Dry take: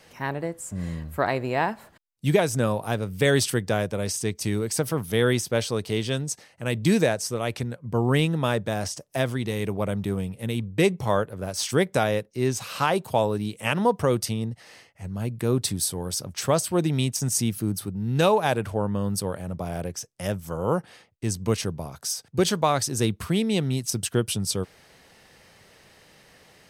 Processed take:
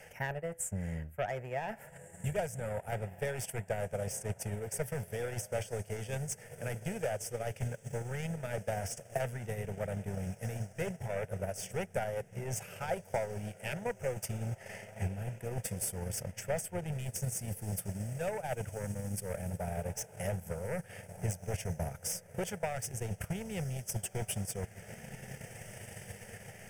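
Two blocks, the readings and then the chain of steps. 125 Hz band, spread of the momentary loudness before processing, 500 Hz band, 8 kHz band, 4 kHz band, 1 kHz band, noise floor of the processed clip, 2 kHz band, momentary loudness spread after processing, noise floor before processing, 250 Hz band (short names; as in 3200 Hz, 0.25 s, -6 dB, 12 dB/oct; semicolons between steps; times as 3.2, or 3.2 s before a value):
-10.0 dB, 9 LU, -12.0 dB, -10.0 dB, -18.0 dB, -13.5 dB, -56 dBFS, -12.0 dB, 5 LU, -57 dBFS, -16.5 dB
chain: reverse; compressor 6:1, threshold -34 dBFS, peak gain reduction 18 dB; reverse; sine folder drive 8 dB, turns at -22 dBFS; fixed phaser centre 1100 Hz, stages 6; diffused feedback echo 1.661 s, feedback 53%, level -11 dB; transient shaper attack +9 dB, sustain -9 dB; gain -8 dB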